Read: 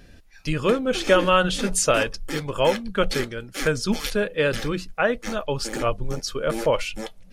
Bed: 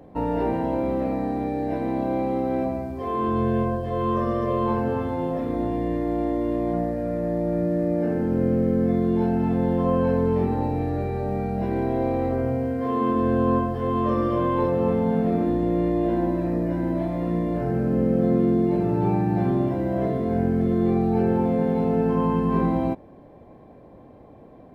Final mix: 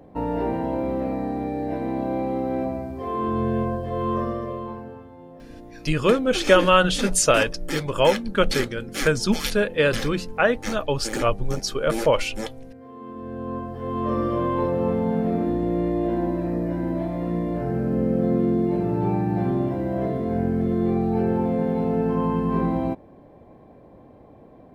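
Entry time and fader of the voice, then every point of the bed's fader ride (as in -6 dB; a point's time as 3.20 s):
5.40 s, +2.0 dB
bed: 4.20 s -1 dB
5.10 s -18 dB
12.92 s -18 dB
14.15 s -1 dB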